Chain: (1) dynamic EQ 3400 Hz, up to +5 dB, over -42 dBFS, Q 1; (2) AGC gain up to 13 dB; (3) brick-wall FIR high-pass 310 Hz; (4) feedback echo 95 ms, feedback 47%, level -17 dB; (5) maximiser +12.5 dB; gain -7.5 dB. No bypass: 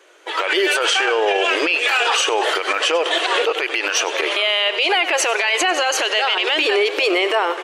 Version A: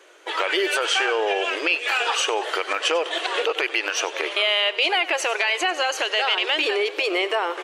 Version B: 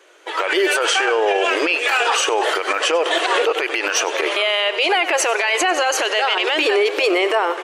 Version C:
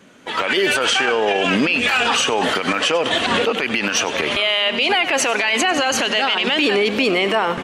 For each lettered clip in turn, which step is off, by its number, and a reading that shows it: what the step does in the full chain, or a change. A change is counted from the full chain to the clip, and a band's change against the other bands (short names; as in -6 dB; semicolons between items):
2, crest factor change +4.5 dB; 1, 4 kHz band -3.0 dB; 3, 250 Hz band +7.0 dB